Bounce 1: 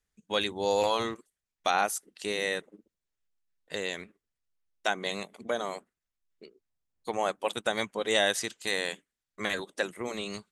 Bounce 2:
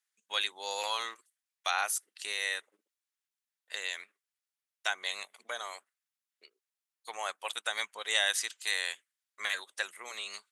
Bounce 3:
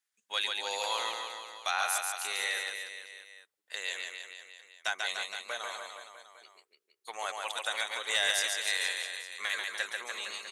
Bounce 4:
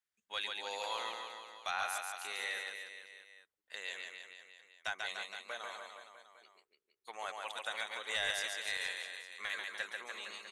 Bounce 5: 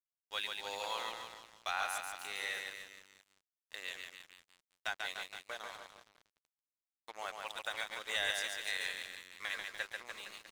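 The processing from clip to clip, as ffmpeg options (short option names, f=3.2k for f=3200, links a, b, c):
-af "highpass=1.2k,equalizer=f=10k:w=3.9:g=4"
-af "aecho=1:1:140|294|463.4|649.7|854.7:0.631|0.398|0.251|0.158|0.1,asoftclip=type=tanh:threshold=-16dB"
-af "bass=f=250:g=8,treble=f=4k:g=-6,volume=-5.5dB"
-af "aeval=exprs='sgn(val(0))*max(abs(val(0))-0.00299,0)':c=same,volume=1.5dB"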